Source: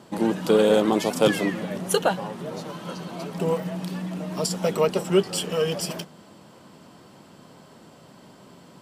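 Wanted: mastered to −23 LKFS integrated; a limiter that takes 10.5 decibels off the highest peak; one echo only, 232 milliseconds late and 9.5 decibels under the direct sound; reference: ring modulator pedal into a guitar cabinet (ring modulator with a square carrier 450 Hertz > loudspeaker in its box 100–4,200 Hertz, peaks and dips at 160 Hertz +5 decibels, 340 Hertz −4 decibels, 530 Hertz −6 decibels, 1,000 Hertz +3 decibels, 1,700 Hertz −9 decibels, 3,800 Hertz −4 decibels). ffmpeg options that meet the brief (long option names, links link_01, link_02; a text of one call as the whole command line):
ffmpeg -i in.wav -af "alimiter=limit=-16dB:level=0:latency=1,aecho=1:1:232:0.335,aeval=exprs='val(0)*sgn(sin(2*PI*450*n/s))':channel_layout=same,highpass=100,equalizer=frequency=160:width_type=q:width=4:gain=5,equalizer=frequency=340:width_type=q:width=4:gain=-4,equalizer=frequency=530:width_type=q:width=4:gain=-6,equalizer=frequency=1000:width_type=q:width=4:gain=3,equalizer=frequency=1700:width_type=q:width=4:gain=-9,equalizer=frequency=3800:width_type=q:width=4:gain=-4,lowpass=frequency=4200:width=0.5412,lowpass=frequency=4200:width=1.3066,volume=6dB" out.wav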